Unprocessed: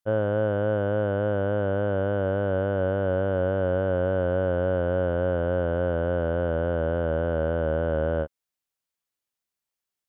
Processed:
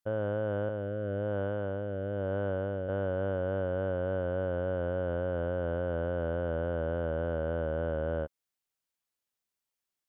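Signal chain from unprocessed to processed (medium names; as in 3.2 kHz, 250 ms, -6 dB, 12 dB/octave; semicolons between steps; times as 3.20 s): peak limiter -21 dBFS, peak gain reduction 7 dB; 0.69–2.89 s: rotary cabinet horn 1 Hz; trim -1.5 dB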